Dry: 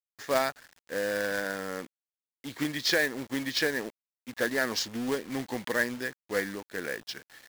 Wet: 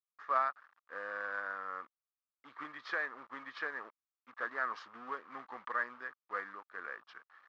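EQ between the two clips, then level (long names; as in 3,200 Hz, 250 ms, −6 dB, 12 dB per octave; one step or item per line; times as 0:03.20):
resonant band-pass 1,200 Hz, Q 7.5
high-frequency loss of the air 120 metres
+7.5 dB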